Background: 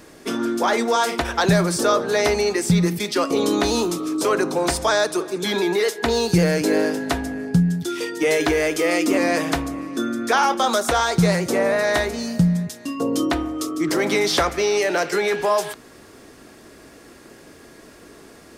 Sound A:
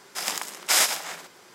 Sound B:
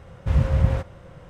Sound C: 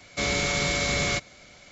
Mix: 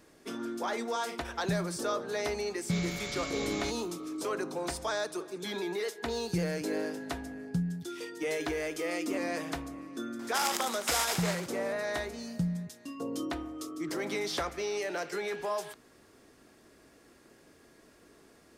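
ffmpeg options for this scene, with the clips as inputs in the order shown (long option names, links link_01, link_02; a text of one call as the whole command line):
ffmpeg -i bed.wav -i cue0.wav -i cue1.wav -i cue2.wav -filter_complex "[0:a]volume=-14dB[link_01];[1:a]acompressor=threshold=-26dB:ratio=6:attack=3.2:release=140:knee=1:detection=peak[link_02];[3:a]atrim=end=1.71,asetpts=PTS-STARTPTS,volume=-13.5dB,afade=type=in:duration=0.004:curve=hsin,afade=type=out:start_time=1.706:duration=0.004:curve=hsin,adelay=2520[link_03];[link_02]atrim=end=1.54,asetpts=PTS-STARTPTS,volume=-1dB,afade=type=in:duration=0.004:curve=hsin,afade=type=out:start_time=1.536:duration=0.004:curve=hsin,adelay=10190[link_04];[link_01][link_03][link_04]amix=inputs=3:normalize=0" out.wav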